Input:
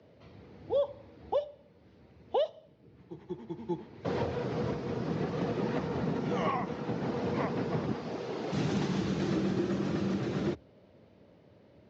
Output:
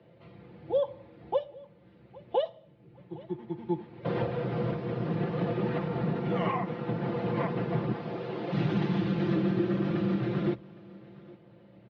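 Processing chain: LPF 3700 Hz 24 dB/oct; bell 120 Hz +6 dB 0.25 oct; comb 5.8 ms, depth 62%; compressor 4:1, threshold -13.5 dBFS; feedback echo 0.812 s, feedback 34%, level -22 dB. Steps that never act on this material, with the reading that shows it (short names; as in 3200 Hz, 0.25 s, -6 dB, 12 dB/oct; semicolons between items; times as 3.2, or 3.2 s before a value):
compressor, threshold -13.5 dBFS: input peak -16.0 dBFS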